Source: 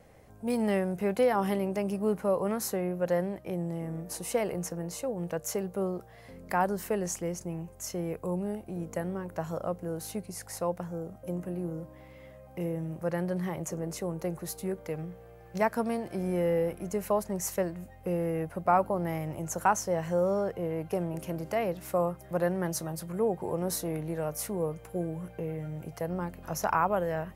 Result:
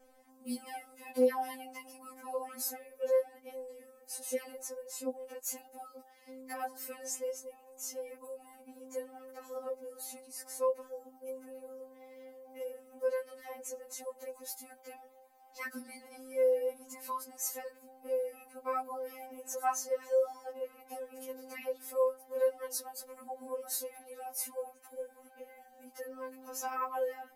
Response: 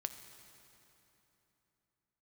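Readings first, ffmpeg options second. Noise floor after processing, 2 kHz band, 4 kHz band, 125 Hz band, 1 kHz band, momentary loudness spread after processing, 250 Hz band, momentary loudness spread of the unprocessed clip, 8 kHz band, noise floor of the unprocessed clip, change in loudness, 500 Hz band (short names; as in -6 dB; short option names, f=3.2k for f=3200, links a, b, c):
-61 dBFS, -8.0 dB, -4.5 dB, under -40 dB, -8.0 dB, 19 LU, -15.0 dB, 10 LU, -2.5 dB, -51 dBFS, -6.0 dB, -4.5 dB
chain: -af "crystalizer=i=1:c=0,equalizer=f=4.7k:w=6.9:g=4,afftfilt=real='re*3.46*eq(mod(b,12),0)':imag='im*3.46*eq(mod(b,12),0)':win_size=2048:overlap=0.75,volume=-5.5dB"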